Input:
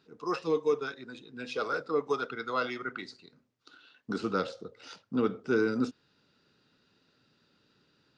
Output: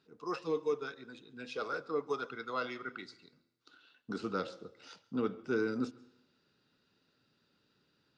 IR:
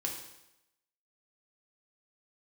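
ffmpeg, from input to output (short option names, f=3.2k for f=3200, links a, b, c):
-filter_complex "[0:a]asplit=2[a][b];[1:a]atrim=start_sample=2205,adelay=135[c];[b][c]afir=irnorm=-1:irlink=0,volume=-23dB[d];[a][d]amix=inputs=2:normalize=0,volume=-5.5dB"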